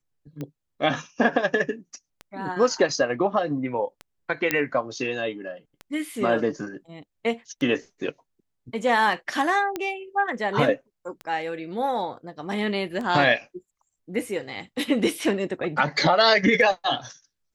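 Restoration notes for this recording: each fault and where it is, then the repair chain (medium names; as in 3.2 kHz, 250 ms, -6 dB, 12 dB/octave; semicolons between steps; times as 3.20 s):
tick 33 1/3 rpm -21 dBFS
4.51 s: pop -6 dBFS
9.76 s: pop -14 dBFS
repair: de-click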